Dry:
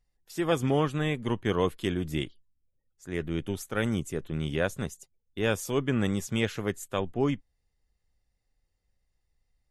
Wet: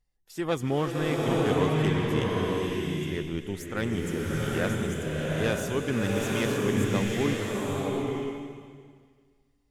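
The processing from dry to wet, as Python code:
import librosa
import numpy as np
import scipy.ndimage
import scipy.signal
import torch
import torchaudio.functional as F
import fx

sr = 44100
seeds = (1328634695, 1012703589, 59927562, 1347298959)

y = fx.self_delay(x, sr, depth_ms=0.051)
y = fx.rev_bloom(y, sr, seeds[0], attack_ms=900, drr_db=-3.5)
y = y * 10.0 ** (-2.0 / 20.0)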